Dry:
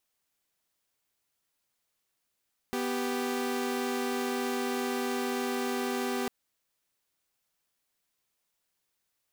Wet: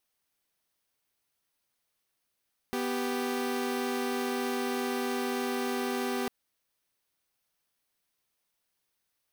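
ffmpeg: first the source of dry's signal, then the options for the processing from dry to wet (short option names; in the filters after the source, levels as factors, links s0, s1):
-f lavfi -i "aevalsrc='0.0335*((2*mod(246.94*t,1)-1)+(2*mod(392*t,1)-1))':d=3.55:s=44100"
-af "bandreject=f=7200:w=7.5"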